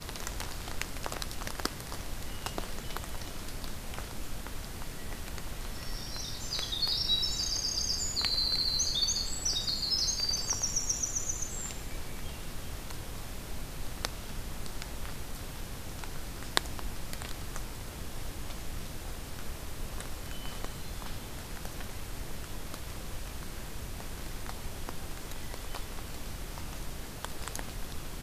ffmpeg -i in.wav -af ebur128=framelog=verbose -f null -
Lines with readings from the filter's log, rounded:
Integrated loudness:
  I:         -35.1 LUFS
  Threshold: -45.1 LUFS
Loudness range:
  LRA:        13.4 LU
  Threshold: -54.8 LUFS
  LRA low:   -41.9 LUFS
  LRA high:  -28.5 LUFS